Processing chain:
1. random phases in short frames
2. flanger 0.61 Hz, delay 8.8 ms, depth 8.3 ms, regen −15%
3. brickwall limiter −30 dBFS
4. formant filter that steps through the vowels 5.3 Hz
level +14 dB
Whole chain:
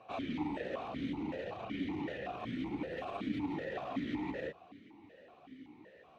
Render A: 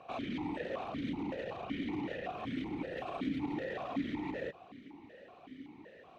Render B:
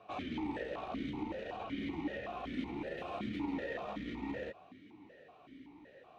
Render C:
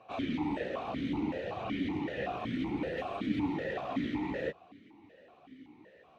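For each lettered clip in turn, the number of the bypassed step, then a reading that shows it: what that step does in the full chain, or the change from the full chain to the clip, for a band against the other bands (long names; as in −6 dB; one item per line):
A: 2, change in momentary loudness spread −3 LU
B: 1, 125 Hz band −2.0 dB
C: 3, average gain reduction 3.0 dB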